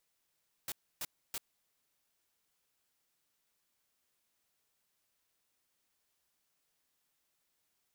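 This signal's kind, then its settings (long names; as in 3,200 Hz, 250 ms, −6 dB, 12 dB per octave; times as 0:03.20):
noise bursts white, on 0.04 s, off 0.29 s, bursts 3, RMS −39 dBFS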